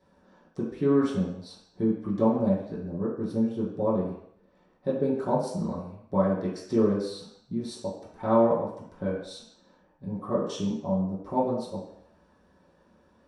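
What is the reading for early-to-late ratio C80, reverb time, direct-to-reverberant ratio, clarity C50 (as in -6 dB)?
6.5 dB, 0.70 s, -10.0 dB, 3.5 dB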